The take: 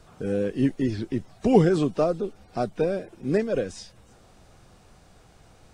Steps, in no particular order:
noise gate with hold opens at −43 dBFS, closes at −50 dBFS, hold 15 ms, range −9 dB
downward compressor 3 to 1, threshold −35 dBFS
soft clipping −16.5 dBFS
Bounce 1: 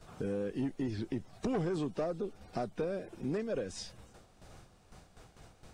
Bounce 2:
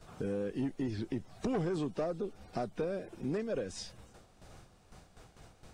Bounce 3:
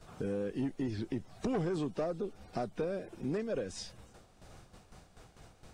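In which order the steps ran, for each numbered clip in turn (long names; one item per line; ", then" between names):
soft clipping, then downward compressor, then noise gate with hold
soft clipping, then noise gate with hold, then downward compressor
noise gate with hold, then soft clipping, then downward compressor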